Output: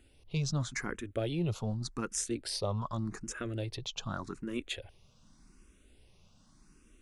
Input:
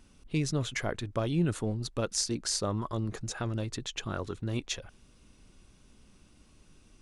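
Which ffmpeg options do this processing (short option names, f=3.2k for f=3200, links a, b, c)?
-filter_complex "[0:a]asplit=2[a][b];[b]afreqshift=0.85[c];[a][c]amix=inputs=2:normalize=1"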